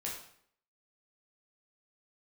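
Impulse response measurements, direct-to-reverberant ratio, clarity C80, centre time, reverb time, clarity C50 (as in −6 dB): −4.5 dB, 7.5 dB, 38 ms, 0.65 s, 4.0 dB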